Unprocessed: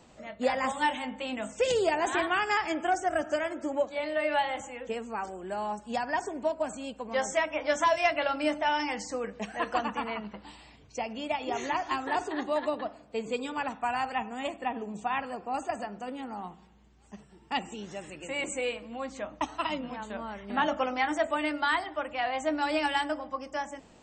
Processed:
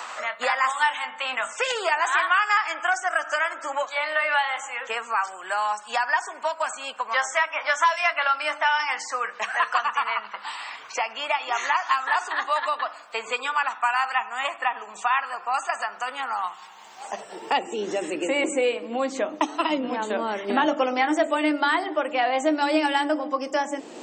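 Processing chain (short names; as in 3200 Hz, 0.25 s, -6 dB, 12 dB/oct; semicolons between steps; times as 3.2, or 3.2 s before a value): high-pass sweep 1200 Hz -> 330 Hz, 16.55–17.88; de-hum 98.33 Hz, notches 4; three-band squash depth 70%; gain +5.5 dB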